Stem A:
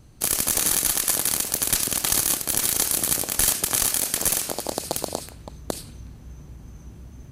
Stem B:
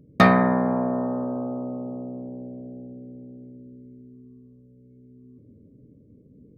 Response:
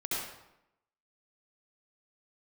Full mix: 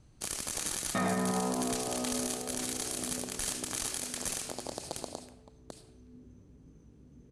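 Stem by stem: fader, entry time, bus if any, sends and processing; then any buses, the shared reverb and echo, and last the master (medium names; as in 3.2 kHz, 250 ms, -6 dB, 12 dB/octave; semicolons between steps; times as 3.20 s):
4.92 s -10 dB -> 5.44 s -19 dB, 0.00 s, send -18.5 dB, none
-9.0 dB, 0.75 s, send -3.5 dB, chorus 1 Hz, delay 18.5 ms, depth 2.6 ms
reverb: on, RT60 0.85 s, pre-delay 63 ms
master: low-pass 9.9 kHz 24 dB/octave; peak limiter -21.5 dBFS, peak gain reduction 11 dB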